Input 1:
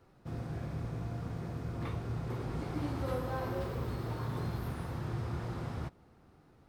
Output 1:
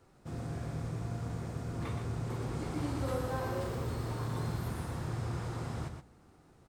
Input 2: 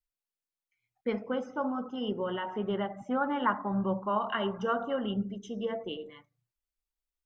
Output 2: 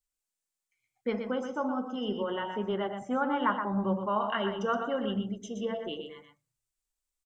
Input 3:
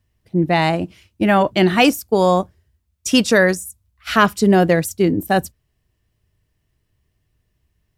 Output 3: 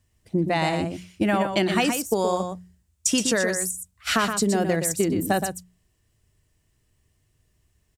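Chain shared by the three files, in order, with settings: bell 7800 Hz +9.5 dB 0.82 oct; notches 60/120/180 Hz; compressor 10:1, threshold -19 dBFS; on a send: echo 0.121 s -7 dB

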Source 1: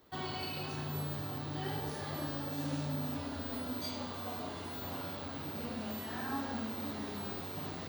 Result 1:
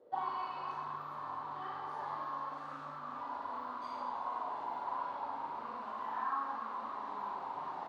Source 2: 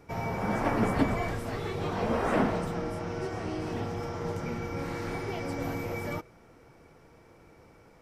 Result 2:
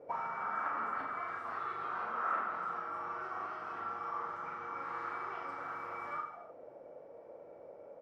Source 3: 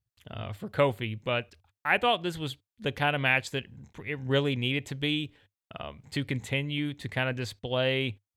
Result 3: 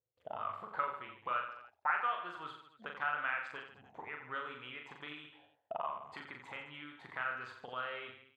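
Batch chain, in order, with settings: compressor 3:1, threshold -38 dBFS; auto-wah 500–1300 Hz, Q 7.8, up, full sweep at -35.5 dBFS; on a send: reverse bouncing-ball echo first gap 40 ms, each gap 1.2×, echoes 5; on the sum: gain +14 dB

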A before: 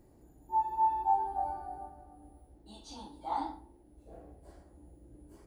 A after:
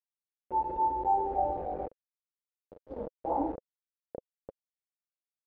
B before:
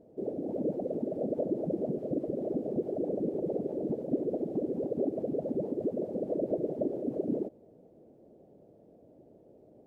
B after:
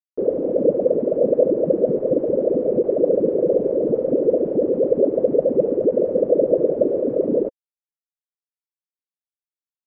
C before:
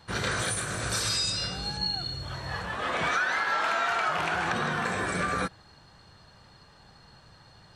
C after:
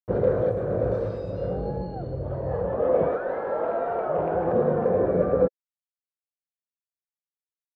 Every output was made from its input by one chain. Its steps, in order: in parallel at 0 dB: limiter -23.5 dBFS; on the sum: bit-crush 6-bit; synth low-pass 520 Hz, resonance Q 4.9

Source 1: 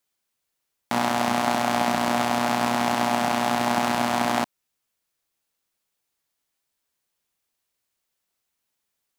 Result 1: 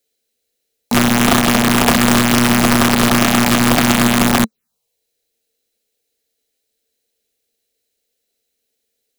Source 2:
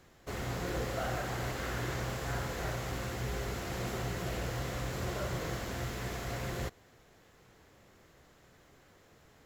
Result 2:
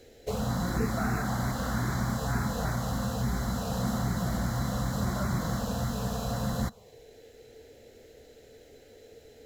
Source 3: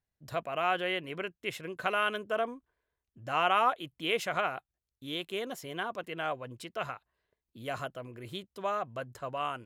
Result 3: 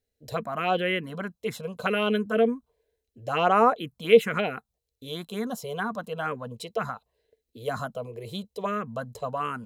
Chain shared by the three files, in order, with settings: envelope phaser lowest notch 180 Hz, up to 3300 Hz, full sweep at -22 dBFS; small resonant body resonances 220/450/4000 Hz, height 14 dB, ringing for 55 ms; wrapped overs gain 11.5 dB; gain +6 dB

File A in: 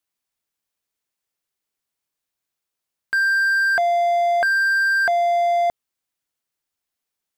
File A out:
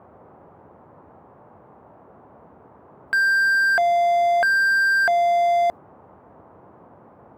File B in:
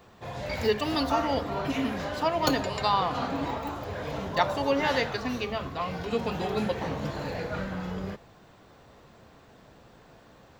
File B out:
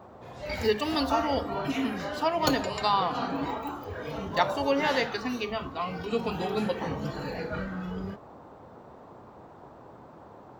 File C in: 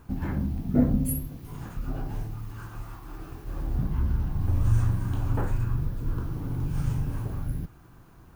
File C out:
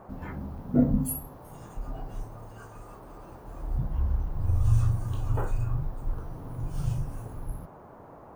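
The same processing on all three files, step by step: spectral noise reduction 9 dB; band noise 72–1000 Hz -49 dBFS

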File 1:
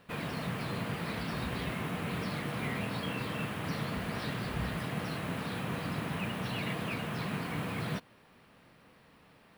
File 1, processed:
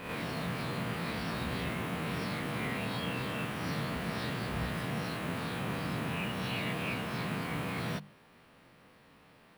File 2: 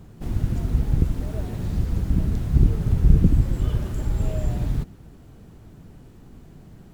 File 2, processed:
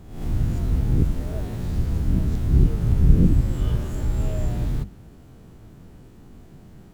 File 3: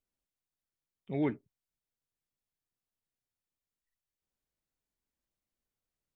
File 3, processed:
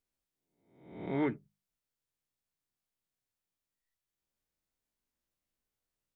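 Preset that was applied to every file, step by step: spectral swells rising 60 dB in 0.72 s; notches 50/100/150/200 Hz; gain -1.5 dB

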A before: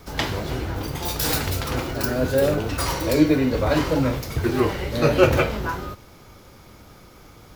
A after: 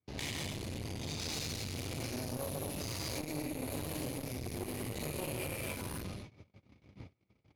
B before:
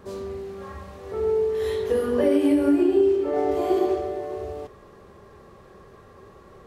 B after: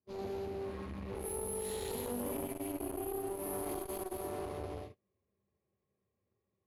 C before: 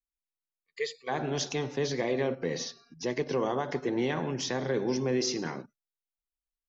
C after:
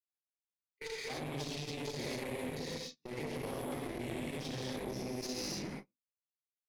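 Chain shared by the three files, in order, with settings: bell 3000 Hz -10 dB 1.4 oct; careless resampling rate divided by 4×, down filtered, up hold; low-pass opened by the level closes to 2100 Hz, open at -20.5 dBFS; EQ curve 150 Hz 0 dB, 1500 Hz -12 dB, 2300 Hz +9 dB; non-linear reverb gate 0.32 s flat, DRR -7 dB; gate -37 dBFS, range -35 dB; HPF 79 Hz 24 dB/oct; compressor 6:1, threshold -28 dBFS; one-sided clip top -40 dBFS, bottom -20 dBFS; flange 2 Hz, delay 0.8 ms, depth 3.4 ms, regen -77%; core saturation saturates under 470 Hz; gain +1 dB

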